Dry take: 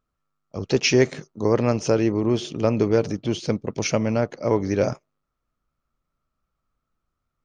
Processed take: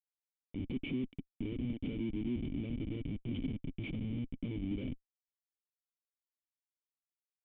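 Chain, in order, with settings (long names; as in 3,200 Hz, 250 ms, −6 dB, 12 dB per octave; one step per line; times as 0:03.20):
gain on a spectral selection 0:02.76–0:04.59, 210–1,100 Hz −7 dB
dynamic equaliser 1,800 Hz, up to −4 dB, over −43 dBFS, Q 3
downward compressor 8 to 1, threshold −25 dBFS, peak gain reduction 13 dB
comparator with hysteresis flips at −31 dBFS
formant resonators in series i
level +6 dB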